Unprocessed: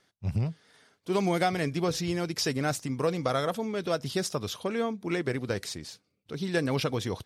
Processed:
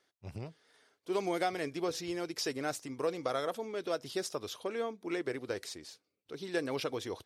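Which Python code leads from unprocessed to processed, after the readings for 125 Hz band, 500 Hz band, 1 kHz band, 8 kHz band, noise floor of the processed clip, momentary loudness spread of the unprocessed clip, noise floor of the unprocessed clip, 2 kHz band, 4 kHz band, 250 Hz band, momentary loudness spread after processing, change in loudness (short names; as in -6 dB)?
-16.0 dB, -5.0 dB, -6.0 dB, -6.5 dB, -83 dBFS, 8 LU, -75 dBFS, -6.5 dB, -6.5 dB, -8.5 dB, 12 LU, -6.5 dB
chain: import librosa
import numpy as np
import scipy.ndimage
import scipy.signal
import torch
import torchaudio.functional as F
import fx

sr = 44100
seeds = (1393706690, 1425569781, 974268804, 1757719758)

y = fx.low_shelf_res(x, sr, hz=250.0, db=-8.0, q=1.5)
y = F.gain(torch.from_numpy(y), -6.5).numpy()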